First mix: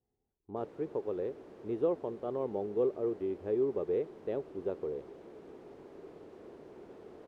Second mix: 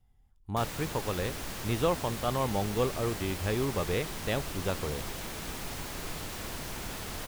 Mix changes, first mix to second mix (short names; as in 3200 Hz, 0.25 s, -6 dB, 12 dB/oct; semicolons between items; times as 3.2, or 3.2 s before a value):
speech -4.0 dB; master: remove band-pass 400 Hz, Q 3.4